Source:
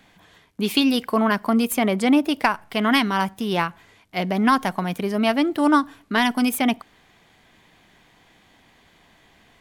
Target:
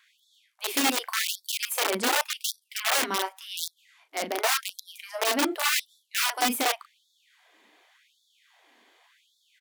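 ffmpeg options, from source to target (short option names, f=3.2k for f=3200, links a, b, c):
-af "aecho=1:1:13|37:0.178|0.447,aeval=exprs='(mod(4.47*val(0)+1,2)-1)/4.47':c=same,afftfilt=real='re*gte(b*sr/1024,210*pow(3400/210,0.5+0.5*sin(2*PI*0.88*pts/sr)))':imag='im*gte(b*sr/1024,210*pow(3400/210,0.5+0.5*sin(2*PI*0.88*pts/sr)))':win_size=1024:overlap=0.75,volume=-5dB"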